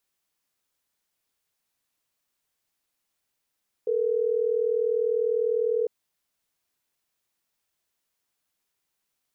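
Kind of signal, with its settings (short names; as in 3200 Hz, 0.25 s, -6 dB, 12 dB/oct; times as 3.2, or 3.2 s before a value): call progress tone ringback tone, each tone -24.5 dBFS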